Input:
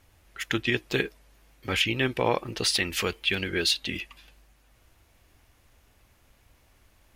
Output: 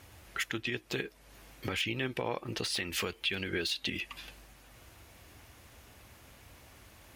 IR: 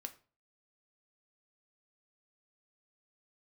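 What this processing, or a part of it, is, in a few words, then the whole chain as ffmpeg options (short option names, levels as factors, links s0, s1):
podcast mastering chain: -af "highpass=66,deesser=0.55,acompressor=threshold=0.00891:ratio=2.5,alimiter=level_in=1.68:limit=0.0631:level=0:latency=1:release=183,volume=0.596,volume=2.51" -ar 48000 -c:a libmp3lame -b:a 96k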